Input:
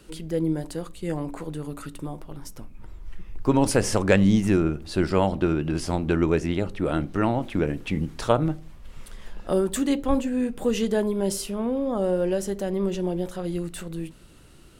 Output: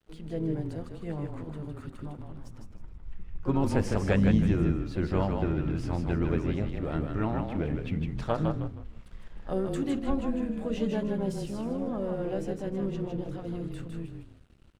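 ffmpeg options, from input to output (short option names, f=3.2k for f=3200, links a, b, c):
-filter_complex "[0:a]lowpass=8.8k,equalizer=f=65:w=0.6:g=4.5,bandreject=f=60:t=h:w=6,bandreject=f=120:t=h:w=6,bandreject=f=180:t=h:w=6,bandreject=f=240:t=h:w=6,bandreject=f=300:t=h:w=6,bandreject=f=360:t=h:w=6,bandreject=f=420:t=h:w=6,bandreject=f=480:t=h:w=6,bandreject=f=540:t=h:w=6,asplit=2[a][b];[b]asplit=4[c][d][e][f];[c]adelay=156,afreqshift=-32,volume=-4.5dB[g];[d]adelay=312,afreqshift=-64,volume=-15dB[h];[e]adelay=468,afreqshift=-96,volume=-25.4dB[i];[f]adelay=624,afreqshift=-128,volume=-35.9dB[j];[g][h][i][j]amix=inputs=4:normalize=0[k];[a][k]amix=inputs=2:normalize=0,asplit=2[l][m];[m]asetrate=58866,aresample=44100,atempo=0.749154,volume=-12dB[n];[l][n]amix=inputs=2:normalize=0,aeval=exprs='sgn(val(0))*max(abs(val(0))-0.00355,0)':c=same,bass=f=250:g=4,treble=f=4k:g=-8,volume=-9dB"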